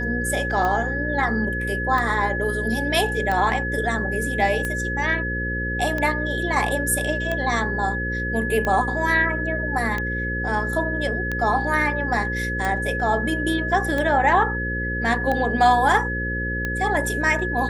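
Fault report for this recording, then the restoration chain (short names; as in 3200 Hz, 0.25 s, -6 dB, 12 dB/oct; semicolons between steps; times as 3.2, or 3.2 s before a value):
buzz 60 Hz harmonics 9 -28 dBFS
tick 45 rpm -13 dBFS
tone 1700 Hz -26 dBFS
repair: de-click; de-hum 60 Hz, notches 9; notch 1700 Hz, Q 30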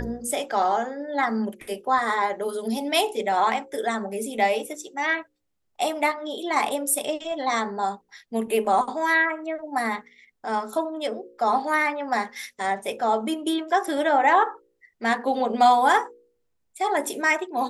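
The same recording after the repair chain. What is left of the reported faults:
none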